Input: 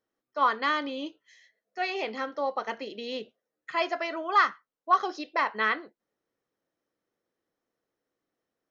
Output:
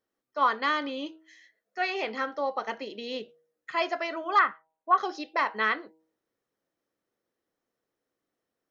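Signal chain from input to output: 0.81–2.35 s: peaking EQ 1.5 kHz +4.5 dB 0.94 oct; 4.39–4.98 s: low-pass 2.7 kHz 24 dB/octave; de-hum 159.3 Hz, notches 6

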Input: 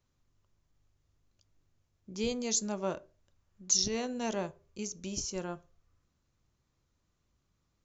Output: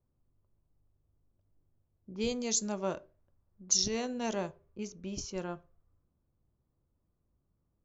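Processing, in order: level-controlled noise filter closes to 740 Hz, open at -28.5 dBFS

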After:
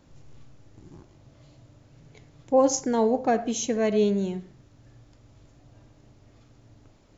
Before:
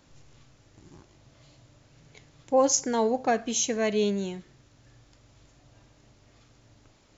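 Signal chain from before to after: tilt shelf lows +4.5 dB, about 910 Hz; on a send: low-pass 2.4 kHz + reverberation RT60 0.40 s, pre-delay 25 ms, DRR 14.5 dB

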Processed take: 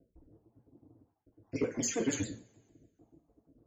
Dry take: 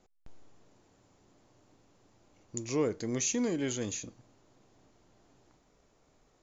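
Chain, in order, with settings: random holes in the spectrogram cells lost 62%; high-pass 65 Hz; level-controlled noise filter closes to 330 Hz, open at -32.5 dBFS; in parallel at +2 dB: compression, threshold -44 dBFS, peak gain reduction 15.5 dB; on the sum: granular stretch 0.57×, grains 52 ms; two-slope reverb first 0.31 s, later 1.6 s, from -28 dB, DRR -0.5 dB; saturation -21 dBFS, distortion -20 dB; vibrato with a chosen wave saw down 6.7 Hz, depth 100 cents

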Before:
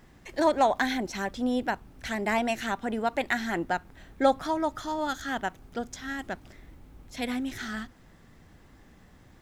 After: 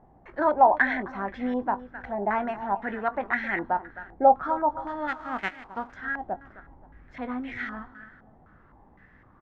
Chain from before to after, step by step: 5.07–5.92 s: formants flattened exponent 0.3; doubling 20 ms -11 dB; feedback delay 263 ms, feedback 36%, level -15 dB; step-sequenced low-pass 3.9 Hz 780–2100 Hz; trim -3.5 dB

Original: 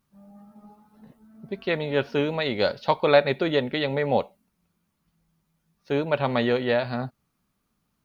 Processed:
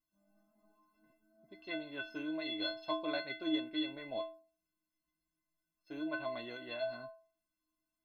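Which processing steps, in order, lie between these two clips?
inharmonic resonator 310 Hz, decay 0.48 s, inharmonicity 0.03; trim +4 dB

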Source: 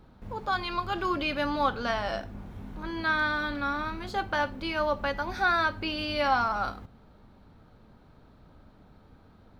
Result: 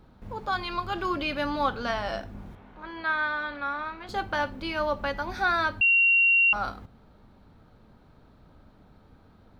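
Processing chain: 2.55–4.09 s: three-band isolator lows -12 dB, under 420 Hz, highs -16 dB, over 3.6 kHz; 5.81–6.53 s: bleep 2.75 kHz -17 dBFS

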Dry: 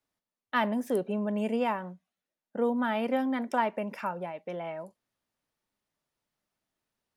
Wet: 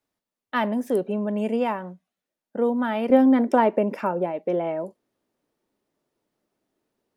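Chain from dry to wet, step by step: peaking EQ 360 Hz +4.5 dB 1.9 oct, from 3.10 s +15 dB; trim +1.5 dB

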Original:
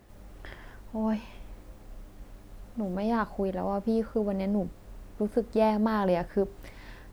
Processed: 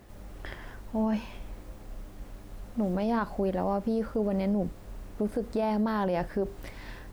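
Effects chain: peak limiter -23.5 dBFS, peak gain reduction 11 dB; trim +3.5 dB

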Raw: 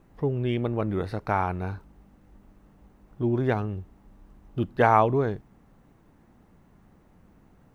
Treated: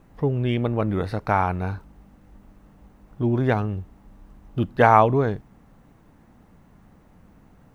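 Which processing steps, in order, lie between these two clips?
peaking EQ 370 Hz -4 dB 0.33 oct; trim +4.5 dB

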